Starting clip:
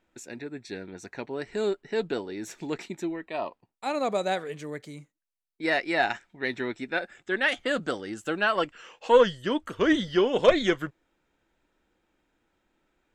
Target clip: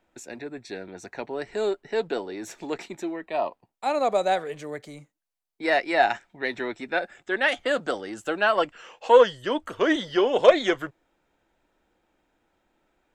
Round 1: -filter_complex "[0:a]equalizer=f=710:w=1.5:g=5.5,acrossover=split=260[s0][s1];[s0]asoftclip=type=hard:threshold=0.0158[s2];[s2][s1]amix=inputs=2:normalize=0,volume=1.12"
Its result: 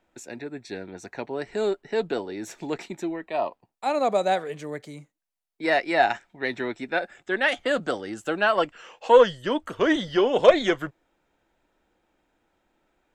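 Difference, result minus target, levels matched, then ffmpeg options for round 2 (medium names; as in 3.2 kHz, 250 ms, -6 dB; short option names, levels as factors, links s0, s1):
hard clipper: distortion -6 dB
-filter_complex "[0:a]equalizer=f=710:w=1.5:g=5.5,acrossover=split=260[s0][s1];[s0]asoftclip=type=hard:threshold=0.00447[s2];[s2][s1]amix=inputs=2:normalize=0,volume=1.12"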